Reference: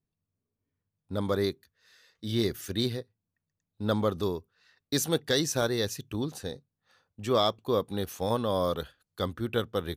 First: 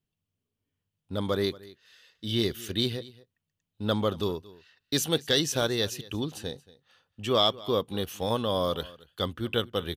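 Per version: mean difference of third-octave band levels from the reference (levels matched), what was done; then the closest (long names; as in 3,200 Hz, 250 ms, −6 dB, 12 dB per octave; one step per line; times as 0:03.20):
2.0 dB: parametric band 3,000 Hz +11 dB 0.44 octaves
on a send: single-tap delay 229 ms −20.5 dB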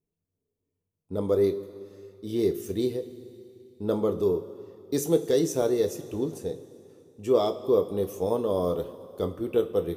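7.0 dB: graphic EQ with 15 bands 400 Hz +11 dB, 1,600 Hz −11 dB, 4,000 Hz −10 dB
coupled-rooms reverb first 0.22 s, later 2.8 s, from −18 dB, DRR 4.5 dB
level −2.5 dB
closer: first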